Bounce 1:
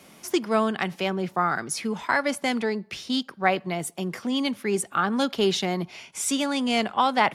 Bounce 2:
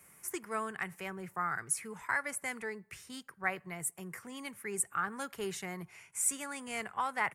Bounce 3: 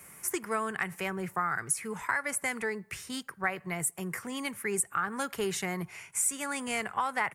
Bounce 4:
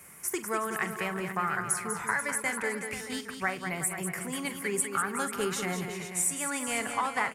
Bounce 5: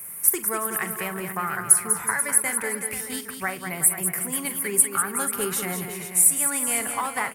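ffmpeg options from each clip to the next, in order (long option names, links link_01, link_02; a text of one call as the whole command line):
ffmpeg -i in.wav -af "firequalizer=gain_entry='entry(120,0);entry(240,-15);entry(430,-7);entry(610,-12);entry(1000,-4);entry(1900,1);entry(3400,-16);entry(5100,-11);entry(8000,6)':delay=0.05:min_phase=1,volume=-7dB" out.wav
ffmpeg -i in.wav -af "acompressor=threshold=-36dB:ratio=3,volume=8.5dB" out.wav
ffmpeg -i in.wav -af "aecho=1:1:43|197|371|487|627:0.224|0.422|0.251|0.282|0.15" out.wav
ffmpeg -i in.wav -af "aexciter=amount=7.6:drive=2.2:freq=9100,volume=2dB" out.wav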